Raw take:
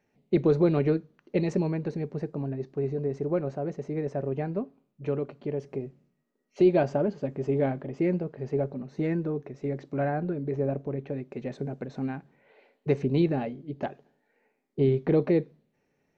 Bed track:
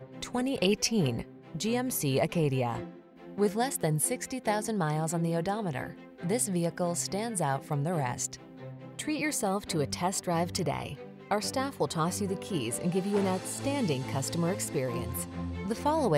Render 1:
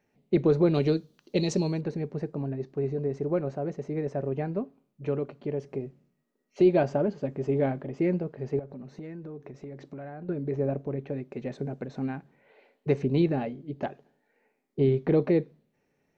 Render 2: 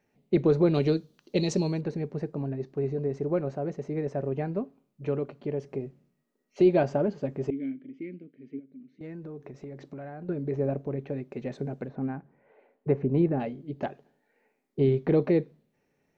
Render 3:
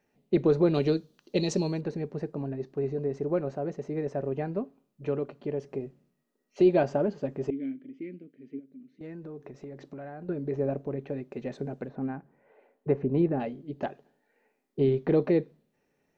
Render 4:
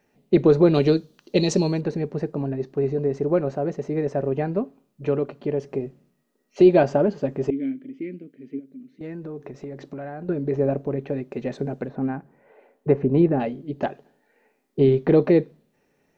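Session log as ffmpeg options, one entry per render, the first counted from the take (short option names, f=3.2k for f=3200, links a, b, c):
-filter_complex "[0:a]asettb=1/sr,asplit=3[a][b][c];[a]atrim=end=0.744[d];[b]atrim=start=0.74:end=1.81,asetpts=PTS-STARTPTS,afade=t=in:d=0.004:c=qsin,afade=t=out:st=1.066:d=0.004:c=qsin,highshelf=f=2.8k:t=q:w=1.5:g=11[e];[c]atrim=start=1.806[f];[d][e]acrossfade=d=0.004:c1=hsin:c2=qsin[g];[g][f]acrossfade=d=0.004:c1=qsin:c2=hsin,asettb=1/sr,asplit=3[h][i][j];[h]atrim=end=8.594[k];[i]atrim=start=8.59:end=10.29,asetpts=PTS-STARTPTS,afade=t=in:d=0.004:c=qsin,afade=t=out:st=1.696:d=0.004:c=qsin,acompressor=threshold=-37dB:ratio=8:attack=3.2:release=140:knee=1:detection=peak[l];[j]atrim=start=10.286[m];[k][l]acrossfade=d=0.004:c1=hsin:c2=qsin[n];[n][m]acrossfade=d=0.004:c1=qsin:c2=hsin"
-filter_complex "[0:a]asettb=1/sr,asplit=3[a][b][c];[a]atrim=end=7.504[d];[b]atrim=start=7.5:end=9.01,asetpts=PTS-STARTPTS,afade=t=in:d=0.004:c=qsin,afade=t=out:st=1.506:d=0.004:c=qsin,asplit=3[e][f][g];[e]bandpass=f=270:t=q:w=8,volume=0dB[h];[f]bandpass=f=2.29k:t=q:w=8,volume=-6dB[i];[g]bandpass=f=3.01k:t=q:w=8,volume=-9dB[j];[h][i][j]amix=inputs=3:normalize=0[k];[c]atrim=start=9.006[l];[d][k]acrossfade=d=0.004:c1=hsin:c2=qsin[m];[m][l]acrossfade=d=0.004:c1=qsin:c2=hsin,asettb=1/sr,asplit=3[n][o][p];[n]atrim=end=11.894[q];[o]atrim=start=11.89:end=13.4,asetpts=PTS-STARTPTS,afade=t=in:d=0.004:c=qsin,afade=t=out:st=1.506:d=0.004:c=qsin,lowpass=1.5k[r];[p]atrim=start=13.396[s];[q][r]acrossfade=d=0.004:c1=hsin:c2=qsin[t];[t][s]acrossfade=d=0.004:c1=qsin:c2=hsin"
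-af "equalizer=f=110:t=o:w=1.4:g=-4,bandreject=f=2.2k:w=21"
-af "volume=7dB"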